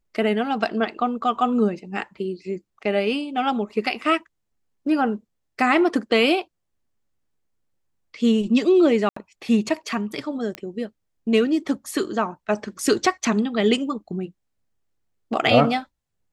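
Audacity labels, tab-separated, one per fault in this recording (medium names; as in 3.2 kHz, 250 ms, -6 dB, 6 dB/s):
9.090000	9.160000	dropout 74 ms
10.550000	10.550000	pop -15 dBFS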